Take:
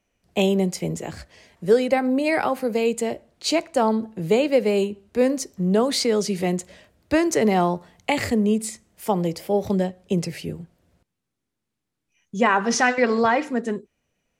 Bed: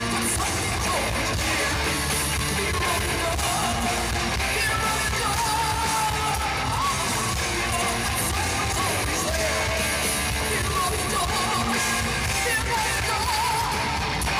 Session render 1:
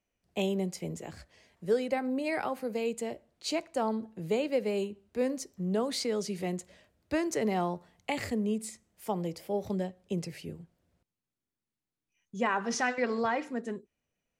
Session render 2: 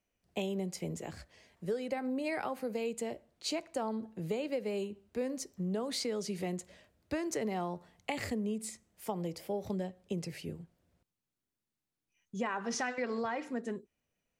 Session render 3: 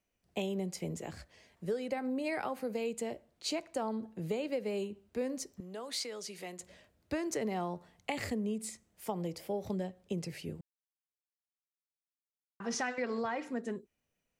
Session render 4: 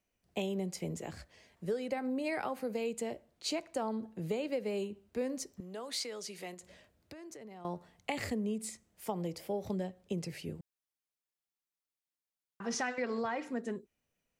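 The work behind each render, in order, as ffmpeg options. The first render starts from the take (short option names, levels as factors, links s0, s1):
-af "volume=0.299"
-af "acompressor=threshold=0.0251:ratio=4"
-filter_complex "[0:a]asettb=1/sr,asplit=3[s0][s1][s2];[s0]atrim=end=5.604[s3];[s1]atrim=start=5.6:end=6.6,asetpts=PTS-STARTPTS,afade=t=in:d=0.004:c=qsin,afade=t=out:st=0.996:d=0.004:c=qsin,highpass=f=950:p=1[s4];[s2]atrim=start=6.596[s5];[s3][s4]acrossfade=d=0.004:c1=hsin:c2=qsin[s6];[s6][s5]acrossfade=d=0.004:c1=qsin:c2=hsin,asplit=3[s7][s8][s9];[s7]atrim=end=10.61,asetpts=PTS-STARTPTS,afade=t=out:st=10.606:d=0.004:c=hsin[s10];[s8]atrim=start=10.61:end=12.6,asetpts=PTS-STARTPTS,volume=0[s11];[s9]atrim=start=12.6,asetpts=PTS-STARTPTS,afade=t=in:d=0.004:c=hsin[s12];[s10][s11][s12]concat=n=3:v=0:a=1"
-filter_complex "[0:a]asettb=1/sr,asplit=3[s0][s1][s2];[s0]atrim=end=6.544[s3];[s1]atrim=start=6.54:end=7.65,asetpts=PTS-STARTPTS,afade=t=in:d=0.004:c=qsin,afade=t=out:st=1.106:d=0.004:c=qsin,acompressor=threshold=0.00447:ratio=6:attack=3.2:release=140:knee=1:detection=peak[s4];[s2]atrim=start=7.646[s5];[s3][s4]acrossfade=d=0.004:c1=hsin:c2=qsin[s6];[s6][s5]acrossfade=d=0.004:c1=qsin:c2=hsin"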